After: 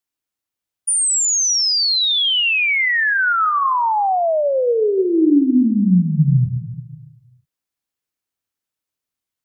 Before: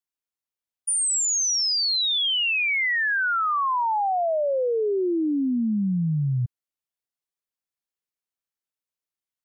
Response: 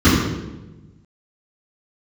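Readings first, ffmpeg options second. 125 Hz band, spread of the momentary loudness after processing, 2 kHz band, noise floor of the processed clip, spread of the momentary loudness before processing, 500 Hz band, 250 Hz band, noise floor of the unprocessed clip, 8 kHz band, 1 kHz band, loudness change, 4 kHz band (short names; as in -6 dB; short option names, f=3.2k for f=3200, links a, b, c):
+8.5 dB, 5 LU, +6.5 dB, under -85 dBFS, 5 LU, +6.5 dB, +9.0 dB, under -85 dBFS, +6.0 dB, +6.0 dB, +6.5 dB, +6.0 dB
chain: -filter_complex "[0:a]asplit=2[a][b];[1:a]atrim=start_sample=2205[c];[b][c]afir=irnorm=-1:irlink=0,volume=-39dB[d];[a][d]amix=inputs=2:normalize=0,volume=6dB"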